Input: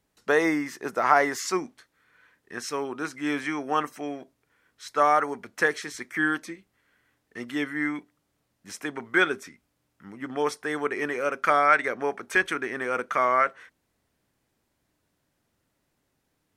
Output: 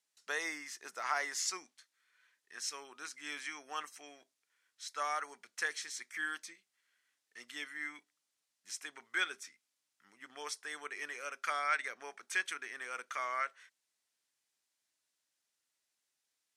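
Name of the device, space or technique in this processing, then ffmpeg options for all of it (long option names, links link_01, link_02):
piezo pickup straight into a mixer: -af "lowpass=7400,aderivative,volume=1dB"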